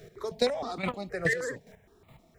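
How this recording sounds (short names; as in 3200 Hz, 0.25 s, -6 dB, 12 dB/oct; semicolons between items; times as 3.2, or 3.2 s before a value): a quantiser's noise floor 12-bit, dither none; chopped level 2.4 Hz, depth 65%, duty 20%; notches that jump at a steady rate 6.4 Hz 260–1600 Hz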